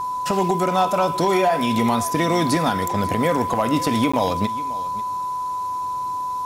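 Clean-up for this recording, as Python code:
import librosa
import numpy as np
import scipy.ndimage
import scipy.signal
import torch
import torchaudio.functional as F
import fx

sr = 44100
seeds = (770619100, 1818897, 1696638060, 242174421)

y = fx.fix_declip(x, sr, threshold_db=-10.5)
y = fx.notch(y, sr, hz=1000.0, q=30.0)
y = fx.fix_interpolate(y, sr, at_s=(4.12,), length_ms=15.0)
y = fx.fix_echo_inverse(y, sr, delay_ms=542, level_db=-17.0)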